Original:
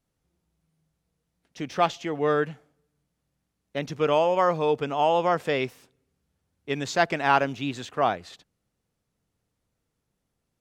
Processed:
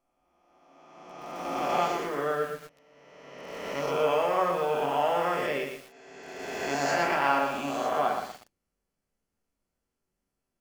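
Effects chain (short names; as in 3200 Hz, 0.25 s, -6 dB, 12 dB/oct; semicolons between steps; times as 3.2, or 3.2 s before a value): spectral swells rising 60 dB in 1.90 s; bell 110 Hz -14.5 dB 0.77 oct; notch 3700 Hz, Q 5.7; on a send at -3 dB: reverb RT60 0.25 s, pre-delay 5 ms; on the sum: lo-fi delay 0.119 s, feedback 35%, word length 6-bit, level -5.5 dB; gain -9 dB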